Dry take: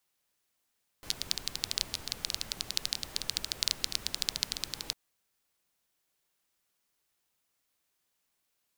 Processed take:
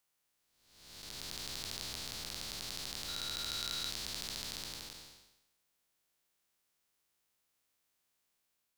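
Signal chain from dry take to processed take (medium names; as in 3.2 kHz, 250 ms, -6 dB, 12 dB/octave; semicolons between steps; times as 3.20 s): spectral blur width 497 ms; 3.08–3.90 s: small resonant body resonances 1.4/3.9 kHz, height 15 dB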